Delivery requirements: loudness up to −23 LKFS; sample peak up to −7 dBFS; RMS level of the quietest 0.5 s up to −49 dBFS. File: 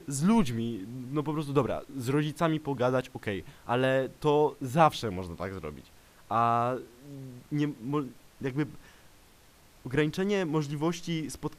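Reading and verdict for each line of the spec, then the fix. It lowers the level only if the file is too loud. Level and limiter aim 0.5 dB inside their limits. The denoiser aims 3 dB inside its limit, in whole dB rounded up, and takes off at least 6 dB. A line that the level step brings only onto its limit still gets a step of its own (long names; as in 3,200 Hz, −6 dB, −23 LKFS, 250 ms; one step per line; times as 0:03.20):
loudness −29.5 LKFS: in spec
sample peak −9.0 dBFS: in spec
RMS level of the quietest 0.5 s −58 dBFS: in spec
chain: no processing needed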